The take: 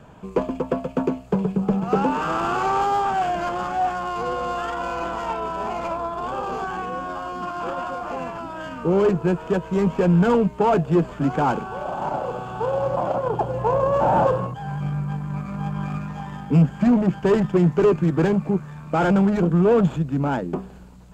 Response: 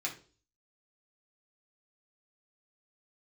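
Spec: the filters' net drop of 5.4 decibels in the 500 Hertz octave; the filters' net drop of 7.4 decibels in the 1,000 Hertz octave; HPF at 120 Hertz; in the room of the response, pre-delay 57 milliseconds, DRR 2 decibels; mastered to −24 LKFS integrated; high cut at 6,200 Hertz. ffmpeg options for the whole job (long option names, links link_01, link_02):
-filter_complex "[0:a]highpass=120,lowpass=6200,equalizer=frequency=500:width_type=o:gain=-5,equalizer=frequency=1000:width_type=o:gain=-8,asplit=2[link_01][link_02];[1:a]atrim=start_sample=2205,adelay=57[link_03];[link_02][link_03]afir=irnorm=-1:irlink=0,volume=-5dB[link_04];[link_01][link_04]amix=inputs=2:normalize=0,volume=0.5dB"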